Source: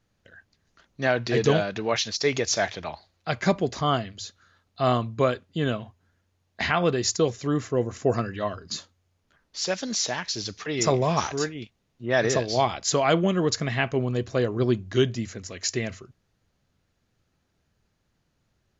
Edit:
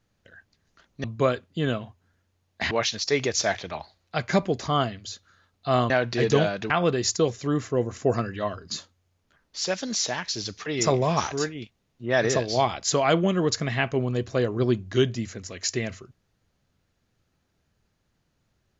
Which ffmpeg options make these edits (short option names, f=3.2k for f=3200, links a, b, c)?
-filter_complex "[0:a]asplit=5[a][b][c][d][e];[a]atrim=end=1.042[f];[b]atrim=start=5.028:end=6.702[g];[c]atrim=start=1.838:end=5.032[h];[d]atrim=start=1.038:end=1.842[i];[e]atrim=start=6.698[j];[f][g]acrossfade=d=0.004:c1=hsin:c2=hsin[k];[k][h]acrossfade=d=0.004:c1=hsin:c2=hsin[l];[l][i]acrossfade=d=0.004:c1=hsin:c2=hsin[m];[m][j]acrossfade=d=0.004:c1=hsin:c2=hsin"